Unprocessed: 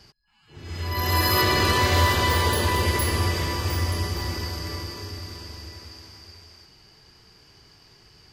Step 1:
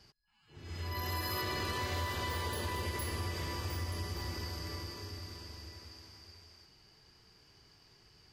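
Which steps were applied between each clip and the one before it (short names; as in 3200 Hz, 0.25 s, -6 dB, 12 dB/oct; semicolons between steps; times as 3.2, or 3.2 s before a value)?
compressor 3:1, threshold -26 dBFS, peak gain reduction 8.5 dB; gain -9 dB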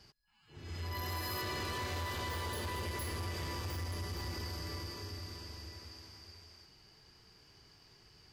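soft clip -34.5 dBFS, distortion -14 dB; gain +1 dB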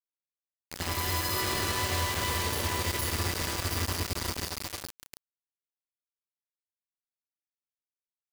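requantised 6-bit, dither none; gain +6 dB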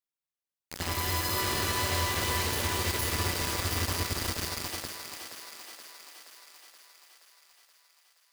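thinning echo 0.475 s, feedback 66%, high-pass 340 Hz, level -8 dB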